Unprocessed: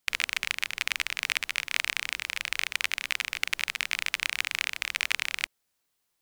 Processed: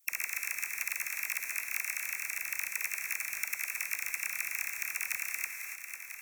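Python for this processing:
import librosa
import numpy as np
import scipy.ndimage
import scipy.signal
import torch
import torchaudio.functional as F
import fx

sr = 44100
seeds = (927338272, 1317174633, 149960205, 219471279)

p1 = fx.brickwall_bandstop(x, sr, low_hz=2700.0, high_hz=5400.0)
p2 = fx.rev_gated(p1, sr, seeds[0], gate_ms=320, shape='flat', drr_db=5.0)
p3 = fx.sample_hold(p2, sr, seeds[1], rate_hz=14000.0, jitter_pct=0)
p4 = p2 + F.gain(torch.from_numpy(p3), -6.0).numpy()
p5 = scipy.signal.lfilter([1.0, -0.9], [1.0], p4)
p6 = fx.dispersion(p5, sr, late='lows', ms=44.0, hz=590.0)
p7 = p6 + fx.echo_feedback(p6, sr, ms=497, feedback_pct=49, wet_db=-16.0, dry=0)
y = fx.band_squash(p7, sr, depth_pct=70)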